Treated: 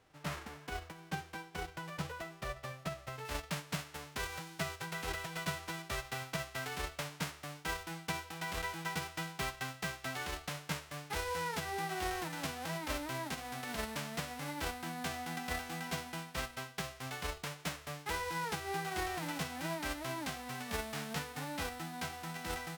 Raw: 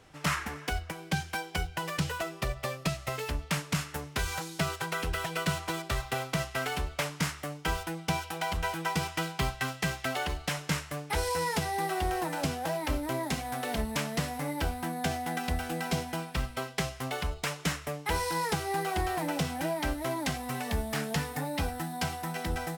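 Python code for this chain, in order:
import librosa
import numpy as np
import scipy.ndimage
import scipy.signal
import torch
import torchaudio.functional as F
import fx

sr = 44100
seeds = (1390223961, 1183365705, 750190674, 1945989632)

y = fx.envelope_flatten(x, sr, power=0.3)
y = fx.lowpass(y, sr, hz=fx.steps((0.0, 1200.0), (3.25, 2700.0)), slope=6)
y = y * librosa.db_to_amplitude(-5.0)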